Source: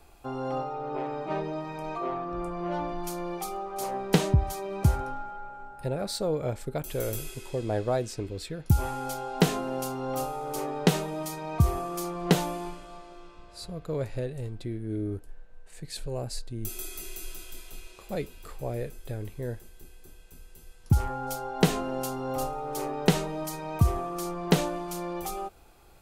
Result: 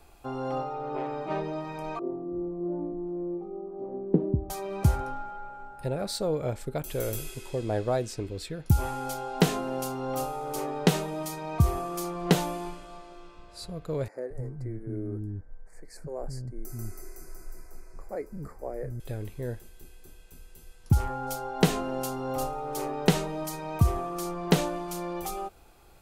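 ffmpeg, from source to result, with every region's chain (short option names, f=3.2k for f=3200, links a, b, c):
-filter_complex "[0:a]asettb=1/sr,asplit=3[a][b][c];[a]atrim=end=1.994[d];[b]atrim=start=1.99:end=4.5,asetpts=PTS-STARTPTS,afade=t=in:d=0.004:c=qsin,afade=t=out:st=2.506:d=0.004:c=qsin,lowpass=f=320:t=q:w=2.3,lowshelf=f=160:g=-10.5,aecho=1:1:990:0.0944,atrim=end_sample=110691[e];[c]atrim=start=4.496[f];[d][e]acrossfade=d=0.004:c1=hsin:c2=qsin[g];[g][f]acrossfade=d=0.004:c1=qsin:c2=hsin,asettb=1/sr,asplit=3[h][i][j];[h]atrim=end=14.084[k];[i]atrim=start=14.08:end=19,asetpts=PTS-STARTPTS,afade=t=in:d=0.004:c=qsin,afade=t=out:st=4.916:d=0.004:c=qsin,asuperstop=centerf=3200:order=8:qfactor=1.3,highshelf=f=2.3k:g=-10,acrossover=split=270[l][m];[l]adelay=220[n];[n][m]amix=inputs=2:normalize=0,atrim=end_sample=216972[o];[j]atrim=start=18.996[p];[k][o]acrossfade=d=0.004:c1=hsin:c2=qsin[q];[q][p]acrossfade=d=0.004:c1=qsin:c2=hsin"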